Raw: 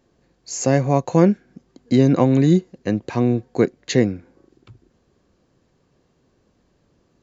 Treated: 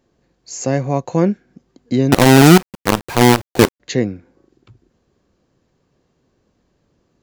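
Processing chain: 2.12–3.8 companded quantiser 2-bit; gain -1 dB

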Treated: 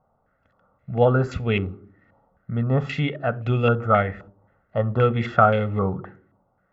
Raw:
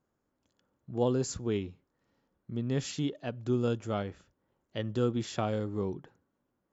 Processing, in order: reverb RT60 0.50 s, pre-delay 3 ms, DRR 16 dB; stepped low-pass 3.8 Hz 950–2500 Hz; gain +8.5 dB

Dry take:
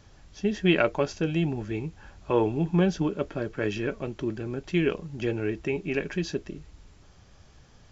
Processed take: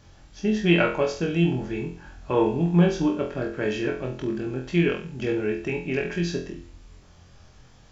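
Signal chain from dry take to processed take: flutter echo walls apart 4 m, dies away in 0.41 s

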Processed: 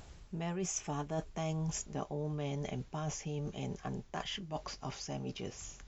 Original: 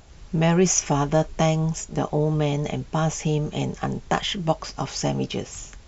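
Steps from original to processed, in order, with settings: Doppler pass-by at 1.52, 9 m/s, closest 5.4 m; reverse; compressor 5:1, threshold -44 dBFS, peak gain reduction 24.5 dB; reverse; gain +6.5 dB

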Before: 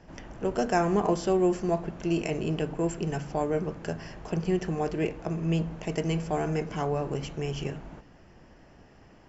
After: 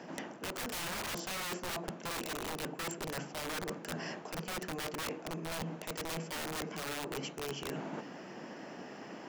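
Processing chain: HPF 190 Hz 24 dB/oct; wrapped overs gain 26.5 dB; reverse; compressor 12:1, threshold -47 dBFS, peak gain reduction 17.5 dB; reverse; gain +10 dB

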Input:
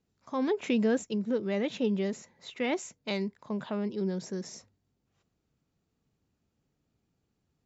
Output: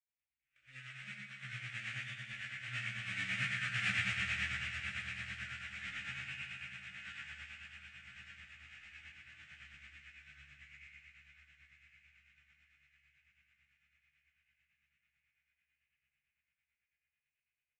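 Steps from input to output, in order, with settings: half-waves squared off; Doppler pass-by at 1.63, 42 m/s, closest 10 m; inverse Chebyshev high-pass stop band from 2500 Hz, stop band 40 dB; air absorption 200 m; comb 6.5 ms, depth 76%; diffused feedback echo 0.456 s, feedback 52%, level -9 dB; FDN reverb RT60 1.4 s, low-frequency decay 1.25×, high-frequency decay 0.9×, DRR -6 dB; AM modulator 21 Hz, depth 35%; wide varispeed 0.43×; gain +14 dB

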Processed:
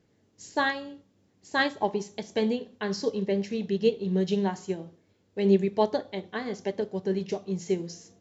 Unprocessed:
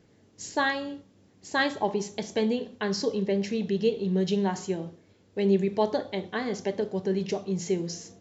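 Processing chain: upward expander 1.5:1, over -37 dBFS; gain +2.5 dB

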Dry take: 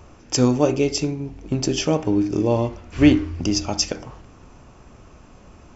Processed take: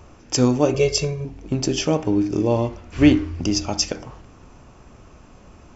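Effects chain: 0.74–1.25 comb 1.8 ms, depth 100%

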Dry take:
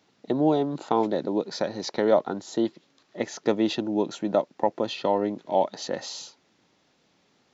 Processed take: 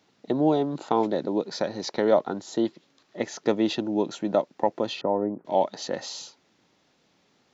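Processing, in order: 5.01–5.45 Gaussian blur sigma 6.5 samples

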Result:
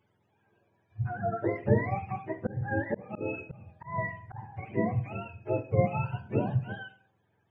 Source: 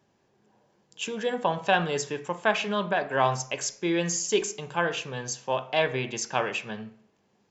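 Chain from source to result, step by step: spectrum mirrored in octaves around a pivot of 580 Hz; Schroeder reverb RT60 0.33 s, combs from 28 ms, DRR 16 dB; 2.46–4.52 auto swell 0.257 s; gain -2 dB

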